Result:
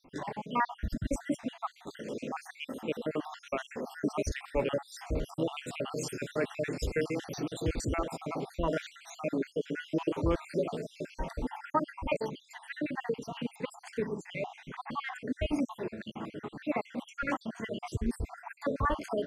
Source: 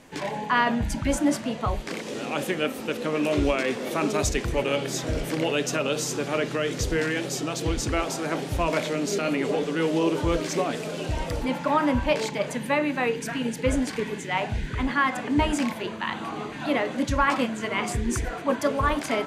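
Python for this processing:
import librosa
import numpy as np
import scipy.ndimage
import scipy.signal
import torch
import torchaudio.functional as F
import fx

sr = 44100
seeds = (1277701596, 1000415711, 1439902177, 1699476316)

y = fx.spec_dropout(x, sr, seeds[0], share_pct=62)
y = fx.high_shelf(y, sr, hz=2400.0, db=fx.steps((0.0, -8.0), (5.9, -3.0), (7.94, -9.0)))
y = y * 10.0 ** (-3.5 / 20.0)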